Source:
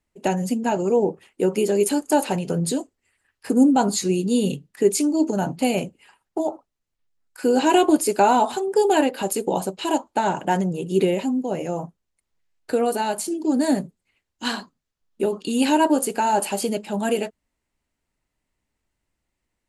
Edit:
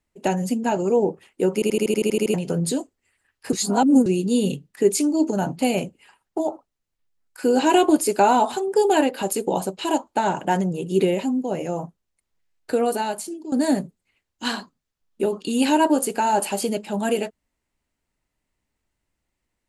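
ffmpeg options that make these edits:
-filter_complex "[0:a]asplit=14[a][b][c][d][e][f][g][h][i][j][k][l][m][n];[a]atrim=end=1.622[o];[b]atrim=start=1.538:end=1.622[p];[c]atrim=start=1.538:end=1.622[q];[d]atrim=start=1.538:end=1.622[r];[e]atrim=start=1.538:end=1.622[s];[f]atrim=start=1.538:end=1.622[t];[g]atrim=start=1.538:end=1.622[u];[h]atrim=start=1.538:end=1.622[v];[i]atrim=start=1.538:end=1.622[w];[j]atrim=start=1.538:end=1.622[x];[k]atrim=start=2.338:end=3.532[y];[l]atrim=start=3.528:end=4.062,asetpts=PTS-STARTPTS,areverse[z];[m]atrim=start=4.058:end=13.52,asetpts=PTS-STARTPTS,afade=t=out:st=8.882:d=0.58:silence=0.199526[aa];[n]atrim=start=13.52,asetpts=PTS-STARTPTS,afade=t=in:d=0.004:c=hsin:silence=0.199526[ab];[o][p]acrossfade=d=0.004:c1=hsin:c2=hsin[ac];[ac][q]acrossfade=d=0.004:c1=hsin:c2=hsin[ad];[ad][r]acrossfade=d=0.004:c1=hsin:c2=hsin[ae];[ae][s]acrossfade=d=0.004:c1=hsin:c2=hsin[af];[af][t]acrossfade=d=0.004:c1=hsin:c2=hsin[ag];[ag][u]acrossfade=d=0.004:c1=hsin:c2=hsin[ah];[ah][v]acrossfade=d=0.004:c1=hsin:c2=hsin[ai];[ai][w]acrossfade=d=0.004:c1=hsin:c2=hsin[aj];[aj][x]acrossfade=d=0.004:c1=hsin:c2=hsin[ak];[ak][y]acrossfade=d=0.004:c1=hsin:c2=hsin[al];[al][z]acrossfade=d=0.004:c1=hsin:c2=hsin[am];[aa][ab]concat=n=2:v=0:a=1[an];[am][an]acrossfade=d=0.004:c1=hsin:c2=hsin"

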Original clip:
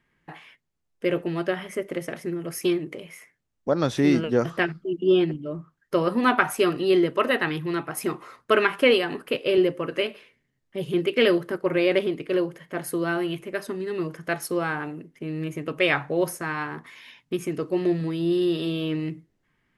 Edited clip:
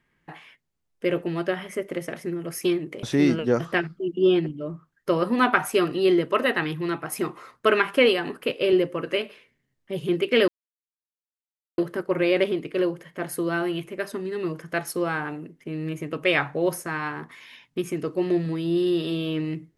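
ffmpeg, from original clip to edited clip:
-filter_complex "[0:a]asplit=3[a][b][c];[a]atrim=end=3.032[d];[b]atrim=start=3.878:end=11.33,asetpts=PTS-STARTPTS,afade=t=out:st=7.448:d=0.004:c=hsin,apad=pad_dur=1.3[e];[c]atrim=start=11.33,asetpts=PTS-STARTPTS,afade=t=in:d=0.004:c=hsin[f];[e][f]concat=n=2:v=0:a=1[g];[d][g]acrossfade=d=0.004:c1=hsin:c2=hsin"

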